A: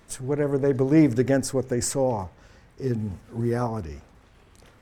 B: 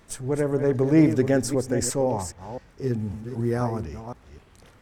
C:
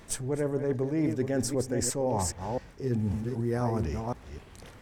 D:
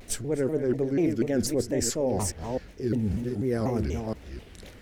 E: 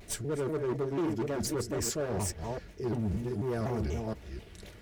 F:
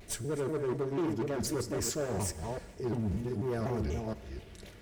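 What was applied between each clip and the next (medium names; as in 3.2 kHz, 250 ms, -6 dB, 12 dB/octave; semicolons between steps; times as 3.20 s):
chunks repeated in reverse 258 ms, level -9.5 dB
peaking EQ 1.3 kHz -3 dB 0.31 oct; reverse; compression 10:1, threshold -29 dBFS, peak gain reduction 16.5 dB; reverse; trim +4 dB
ten-band graphic EQ 125 Hz -6 dB, 1 kHz -11 dB, 8 kHz -4 dB; vibrato with a chosen wave saw down 4.1 Hz, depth 250 cents; trim +5 dB
overload inside the chain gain 25.5 dB; comb of notches 260 Hz; trim -1.5 dB
Schroeder reverb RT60 1.9 s, combs from 33 ms, DRR 15.5 dB; trim -1 dB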